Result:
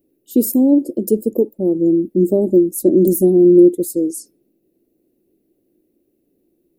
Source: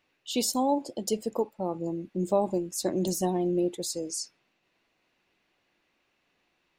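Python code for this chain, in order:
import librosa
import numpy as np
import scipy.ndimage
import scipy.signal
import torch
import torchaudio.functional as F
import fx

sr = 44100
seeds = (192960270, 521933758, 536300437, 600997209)

y = fx.curve_eq(x, sr, hz=(140.0, 340.0, 580.0, 960.0, 2700.0, 3900.0, 6400.0, 12000.0), db=(0, 12, -3, -27, -26, -21, -14, 10))
y = y * librosa.db_to_amplitude(8.0)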